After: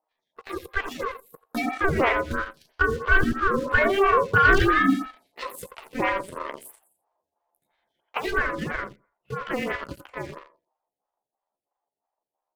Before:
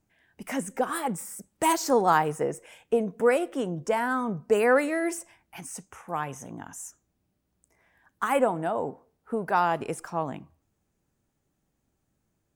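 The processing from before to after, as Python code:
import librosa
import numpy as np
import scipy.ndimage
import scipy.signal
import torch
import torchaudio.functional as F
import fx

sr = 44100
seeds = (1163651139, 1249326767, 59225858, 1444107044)

p1 = fx.pitch_heads(x, sr, semitones=7.0)
p2 = fx.doppler_pass(p1, sr, speed_mps=15, closest_m=19.0, pass_at_s=4.71)
p3 = fx.low_shelf(p2, sr, hz=180.0, db=11.0)
p4 = p3 * np.sin(2.0 * np.pi * 780.0 * np.arange(len(p3)) / sr)
p5 = p4 + fx.echo_feedback(p4, sr, ms=87, feedback_pct=23, wet_db=-9.0, dry=0)
p6 = fx.env_lowpass_down(p5, sr, base_hz=2100.0, full_db=-30.5)
p7 = fx.leveller(p6, sr, passes=2)
p8 = fx.stagger_phaser(p7, sr, hz=3.0)
y = F.gain(torch.from_numpy(p8), 7.5).numpy()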